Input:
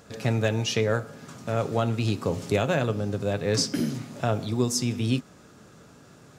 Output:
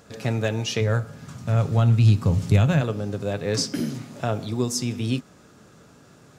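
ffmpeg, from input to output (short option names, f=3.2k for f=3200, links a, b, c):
-filter_complex "[0:a]asplit=3[a][b][c];[a]afade=t=out:st=0.8:d=0.02[d];[b]asubboost=boost=11:cutoff=140,afade=t=in:st=0.8:d=0.02,afade=t=out:st=2.8:d=0.02[e];[c]afade=t=in:st=2.8:d=0.02[f];[d][e][f]amix=inputs=3:normalize=0"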